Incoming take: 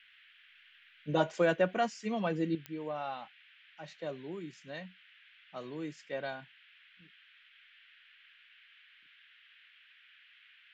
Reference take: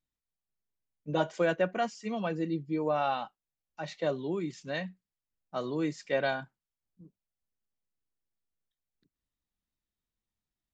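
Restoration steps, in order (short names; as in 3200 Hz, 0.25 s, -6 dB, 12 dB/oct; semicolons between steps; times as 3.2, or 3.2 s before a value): de-click; noise print and reduce 30 dB; gain correction +9 dB, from 2.55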